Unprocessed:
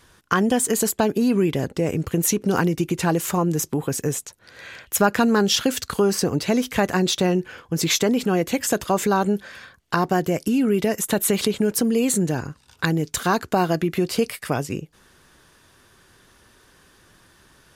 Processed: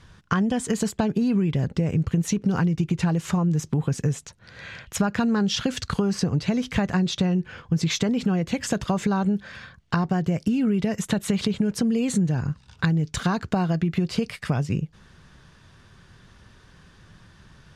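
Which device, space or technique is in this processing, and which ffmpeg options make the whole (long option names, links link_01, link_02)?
jukebox: -af "lowpass=5700,lowshelf=frequency=230:width_type=q:width=1.5:gain=8,acompressor=threshold=-20dB:ratio=4"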